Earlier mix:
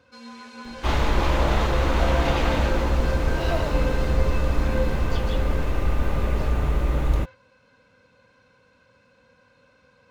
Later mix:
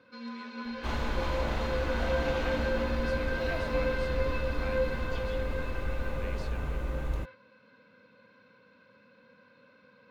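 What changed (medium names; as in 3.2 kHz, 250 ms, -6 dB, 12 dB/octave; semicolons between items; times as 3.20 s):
first sound: add cabinet simulation 170–4300 Hz, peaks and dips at 210 Hz +6 dB, 770 Hz -8 dB, 3 kHz -4 dB; second sound -11.0 dB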